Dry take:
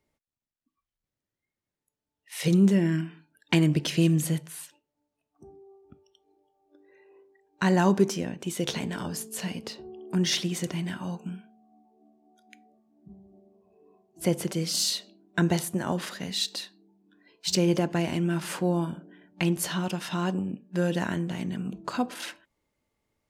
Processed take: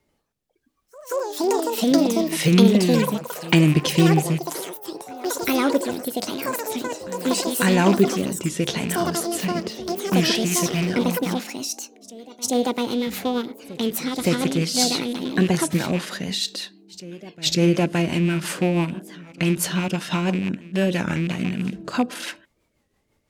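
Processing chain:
loose part that buzzes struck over −30 dBFS, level −27 dBFS
in parallel at 0 dB: downward compressor, threshold −36 dBFS, peak gain reduction 19 dB
on the sum: backwards echo 552 ms −19.5 dB
rotating-speaker cabinet horn 0.75 Hz, later 6 Hz, at 0:10.00
delay with pitch and tempo change per echo 87 ms, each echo +6 semitones, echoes 3
wow of a warped record 33 1/3 rpm, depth 160 cents
level +5 dB

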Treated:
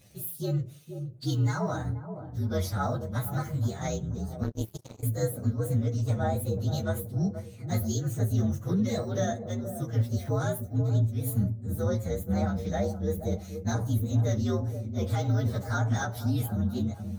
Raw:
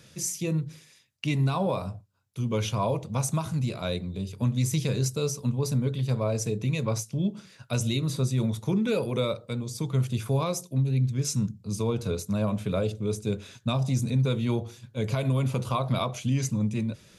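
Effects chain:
partials spread apart or drawn together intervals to 120%
delay with a low-pass on its return 477 ms, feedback 41%, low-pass 760 Hz, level −8 dB
0:04.43–0:05.03: power curve on the samples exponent 3

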